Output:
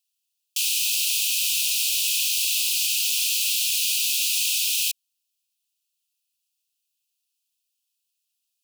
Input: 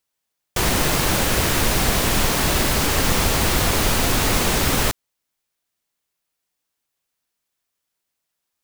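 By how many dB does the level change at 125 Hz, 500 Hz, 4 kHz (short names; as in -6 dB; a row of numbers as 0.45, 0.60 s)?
under -40 dB, under -40 dB, +1.0 dB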